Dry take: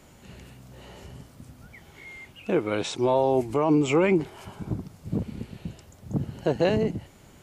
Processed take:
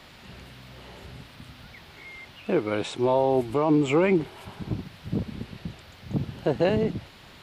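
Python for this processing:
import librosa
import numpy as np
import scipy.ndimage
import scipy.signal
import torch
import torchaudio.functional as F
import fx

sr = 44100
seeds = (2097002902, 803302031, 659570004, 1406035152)

y = fx.peak_eq(x, sr, hz=5900.0, db=-8.0, octaves=0.78)
y = fx.dmg_noise_band(y, sr, seeds[0], low_hz=490.0, high_hz=4300.0, level_db=-52.0)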